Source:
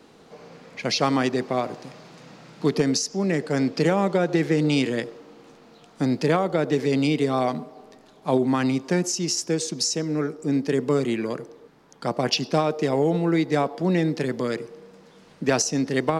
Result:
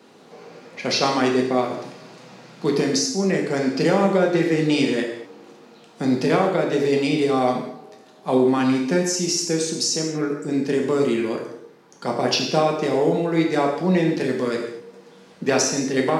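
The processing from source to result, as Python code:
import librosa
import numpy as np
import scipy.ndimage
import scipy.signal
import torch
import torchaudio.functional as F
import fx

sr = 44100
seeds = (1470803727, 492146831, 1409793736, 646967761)

y = scipy.signal.sosfilt(scipy.signal.butter(2, 150.0, 'highpass', fs=sr, output='sos'), x)
y = fx.rev_gated(y, sr, seeds[0], gate_ms=270, shape='falling', drr_db=0.0)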